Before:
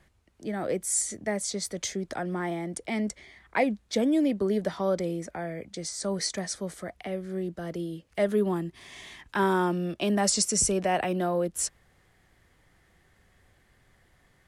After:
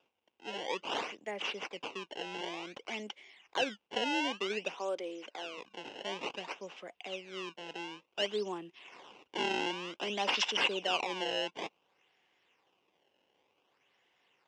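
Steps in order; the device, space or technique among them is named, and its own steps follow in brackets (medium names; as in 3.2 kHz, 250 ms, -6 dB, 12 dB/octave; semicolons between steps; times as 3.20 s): 4.74–5.58 s: high-pass 240 Hz 24 dB/octave; circuit-bent sampling toy (decimation with a swept rate 21×, swing 160% 0.55 Hz; cabinet simulation 520–5400 Hz, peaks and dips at 640 Hz -7 dB, 1.3 kHz -7 dB, 1.8 kHz -8 dB, 2.8 kHz +9 dB, 4.3 kHz -9 dB); trim -2.5 dB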